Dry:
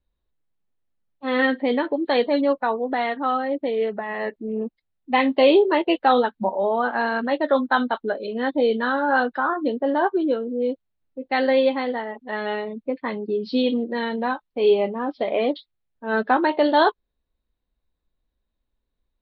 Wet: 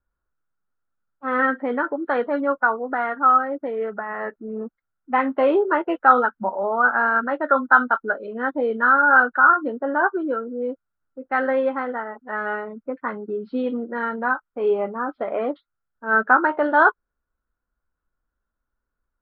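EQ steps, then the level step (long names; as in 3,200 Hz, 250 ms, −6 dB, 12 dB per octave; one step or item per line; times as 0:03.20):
low-pass with resonance 1,400 Hz, resonance Q 9.4
−4.0 dB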